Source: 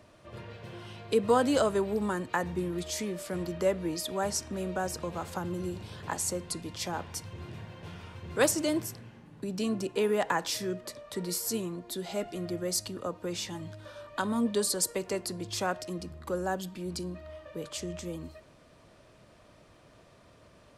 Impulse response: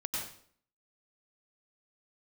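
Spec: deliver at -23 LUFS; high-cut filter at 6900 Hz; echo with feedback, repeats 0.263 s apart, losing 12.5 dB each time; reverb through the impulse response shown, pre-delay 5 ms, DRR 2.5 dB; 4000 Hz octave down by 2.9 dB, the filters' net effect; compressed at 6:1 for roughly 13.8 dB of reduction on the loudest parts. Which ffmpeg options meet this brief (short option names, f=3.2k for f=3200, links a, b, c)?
-filter_complex "[0:a]lowpass=6.9k,equalizer=f=4k:t=o:g=-3,acompressor=threshold=-35dB:ratio=6,aecho=1:1:263|526|789:0.237|0.0569|0.0137,asplit=2[a][b];[1:a]atrim=start_sample=2205,adelay=5[c];[b][c]afir=irnorm=-1:irlink=0,volume=-6dB[d];[a][d]amix=inputs=2:normalize=0,volume=14.5dB"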